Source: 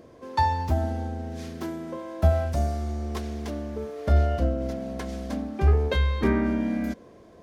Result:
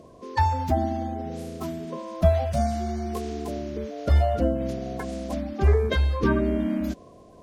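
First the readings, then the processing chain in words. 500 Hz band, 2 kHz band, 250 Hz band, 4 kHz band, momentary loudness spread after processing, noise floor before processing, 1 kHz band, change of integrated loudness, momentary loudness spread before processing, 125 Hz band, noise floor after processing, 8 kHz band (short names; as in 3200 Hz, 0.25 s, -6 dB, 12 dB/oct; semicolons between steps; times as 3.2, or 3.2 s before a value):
+3.0 dB, +0.5 dB, +1.0 dB, +0.5 dB, 11 LU, -51 dBFS, +1.5 dB, +1.0 dB, 11 LU, 0.0 dB, -50 dBFS, n/a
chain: bin magnitudes rounded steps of 30 dB; gain +1.5 dB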